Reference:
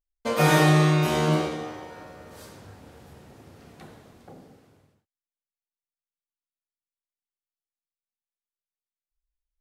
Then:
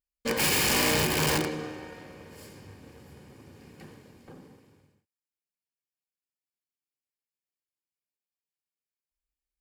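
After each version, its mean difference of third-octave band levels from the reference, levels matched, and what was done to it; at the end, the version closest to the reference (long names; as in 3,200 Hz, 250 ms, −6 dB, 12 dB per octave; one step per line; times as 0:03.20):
5.0 dB: lower of the sound and its delayed copy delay 0.41 ms
wrap-around overflow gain 18.5 dB
notch comb filter 670 Hz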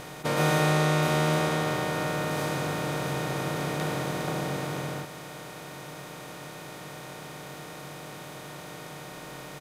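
15.0 dB: compressor on every frequency bin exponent 0.2
double-tracking delay 21 ms −11.5 dB
level −8.5 dB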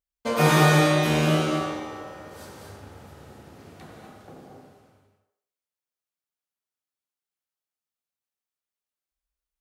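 3.0 dB: high-pass filter 42 Hz
delay with a band-pass on its return 84 ms, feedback 39%, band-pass 810 Hz, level −3 dB
reverb whose tail is shaped and stops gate 270 ms rising, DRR 2 dB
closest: third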